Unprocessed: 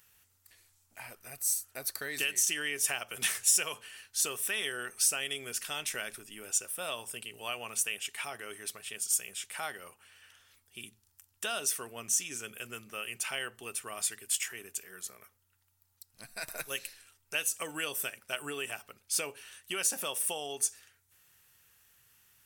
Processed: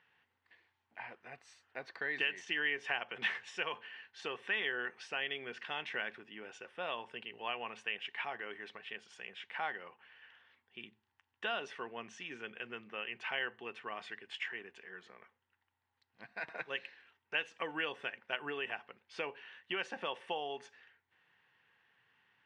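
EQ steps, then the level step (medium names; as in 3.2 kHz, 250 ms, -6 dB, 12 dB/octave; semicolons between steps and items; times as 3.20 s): cabinet simulation 270–2500 Hz, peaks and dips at 280 Hz -6 dB, 410 Hz -5 dB, 610 Hz -9 dB, 1.3 kHz -10 dB, 2.4 kHz -6 dB; +5.5 dB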